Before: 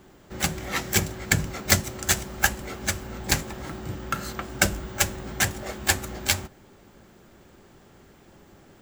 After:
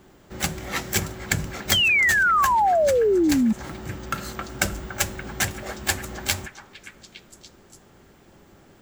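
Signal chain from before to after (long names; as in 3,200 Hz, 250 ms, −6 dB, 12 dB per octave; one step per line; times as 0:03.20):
echo through a band-pass that steps 287 ms, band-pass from 1,100 Hz, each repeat 0.7 octaves, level −11 dB
sound drawn into the spectrogram fall, 0:01.72–0:03.53, 210–3,300 Hz −14 dBFS
downward compressor, threshold −17 dBFS, peak gain reduction 7 dB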